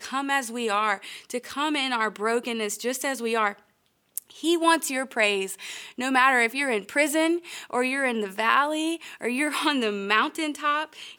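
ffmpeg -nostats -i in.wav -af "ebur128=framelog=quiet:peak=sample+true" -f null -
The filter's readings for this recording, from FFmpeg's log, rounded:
Integrated loudness:
  I:         -24.8 LUFS
  Threshold: -35.1 LUFS
Loudness range:
  LRA:         3.7 LU
  Threshold: -44.9 LUFS
  LRA low:   -27.0 LUFS
  LRA high:  -23.3 LUFS
Sample peak:
  Peak:       -5.4 dBFS
True peak:
  Peak:       -5.1 dBFS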